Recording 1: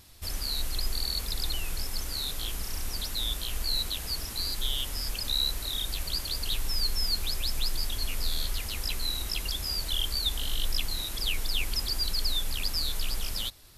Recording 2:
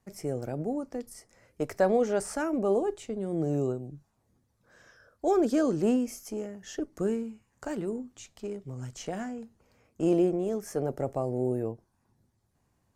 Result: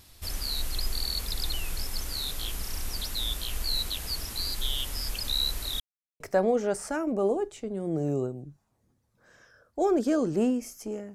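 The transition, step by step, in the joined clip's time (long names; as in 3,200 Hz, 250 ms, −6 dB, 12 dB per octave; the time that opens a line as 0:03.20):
recording 1
0:05.80–0:06.20: silence
0:06.20: continue with recording 2 from 0:01.66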